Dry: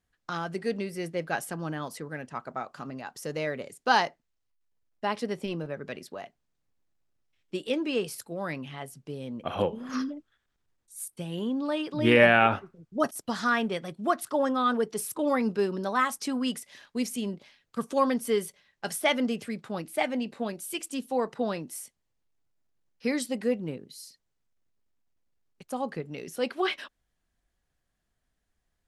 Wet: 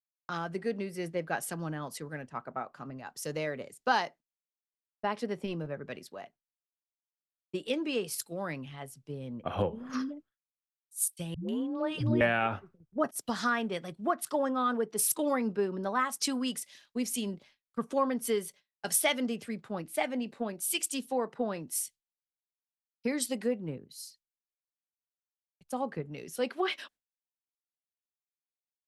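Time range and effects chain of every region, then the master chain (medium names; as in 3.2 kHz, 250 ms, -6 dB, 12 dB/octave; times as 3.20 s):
11.34–12.21 s: upward compressor, threshold -35 dBFS + phase dispersion highs, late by 149 ms, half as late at 310 Hz
whole clip: gate with hold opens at -43 dBFS; compression 3:1, threshold -31 dBFS; three bands expanded up and down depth 100%; trim +1 dB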